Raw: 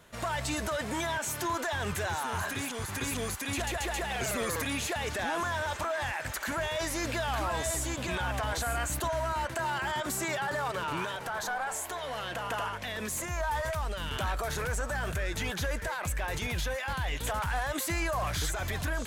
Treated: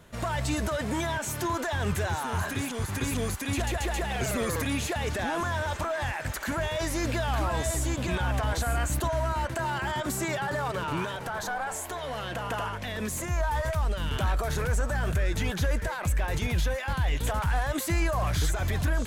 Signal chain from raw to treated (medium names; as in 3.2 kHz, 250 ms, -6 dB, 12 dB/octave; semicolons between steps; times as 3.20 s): bass shelf 390 Hz +8 dB